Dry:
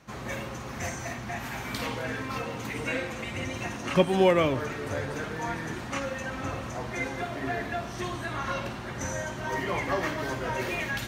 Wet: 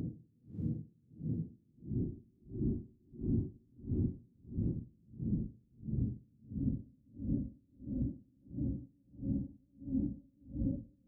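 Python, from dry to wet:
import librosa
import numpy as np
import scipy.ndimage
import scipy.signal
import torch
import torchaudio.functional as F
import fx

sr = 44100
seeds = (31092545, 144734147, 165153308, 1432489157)

p1 = scipy.signal.sosfilt(scipy.signal.cheby2(4, 60, 940.0, 'lowpass', fs=sr, output='sos'), x)
p2 = fx.over_compress(p1, sr, threshold_db=-41.0, ratio=-1.0)
p3 = fx.paulstretch(p2, sr, seeds[0], factor=29.0, window_s=0.1, from_s=5.67)
p4 = fx.vibrato(p3, sr, rate_hz=5.6, depth_cents=64.0)
p5 = p4 + fx.echo_diffused(p4, sr, ms=559, feedback_pct=47, wet_db=-4, dry=0)
p6 = p5 * 10.0 ** (-37 * (0.5 - 0.5 * np.cos(2.0 * np.pi * 1.5 * np.arange(len(p5)) / sr)) / 20.0)
y = p6 * librosa.db_to_amplitude(5.5)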